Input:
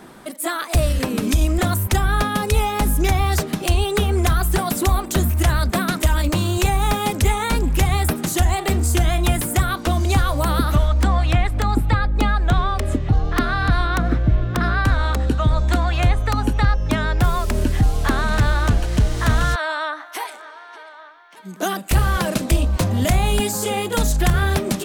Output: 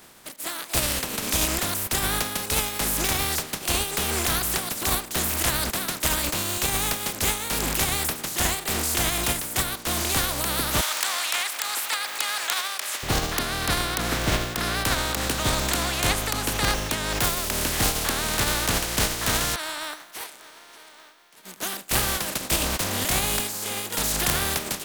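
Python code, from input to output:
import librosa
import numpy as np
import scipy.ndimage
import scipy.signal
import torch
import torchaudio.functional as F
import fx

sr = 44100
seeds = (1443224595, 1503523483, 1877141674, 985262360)

y = fx.spec_flatten(x, sr, power=0.36)
y = fx.highpass(y, sr, hz=1000.0, slope=12, at=(10.81, 13.03))
y = y * librosa.db_to_amplitude(-7.5)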